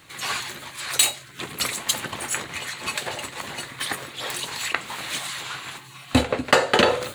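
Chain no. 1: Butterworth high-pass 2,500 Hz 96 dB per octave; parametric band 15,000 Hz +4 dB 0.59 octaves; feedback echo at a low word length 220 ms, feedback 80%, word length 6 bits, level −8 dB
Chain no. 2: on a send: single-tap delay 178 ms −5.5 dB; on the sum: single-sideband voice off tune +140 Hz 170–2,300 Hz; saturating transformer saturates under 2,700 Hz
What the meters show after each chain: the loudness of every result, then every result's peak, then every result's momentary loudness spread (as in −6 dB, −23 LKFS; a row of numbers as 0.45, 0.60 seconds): −27.0, −28.5 LKFS; −1.5, −1.5 dBFS; 13, 14 LU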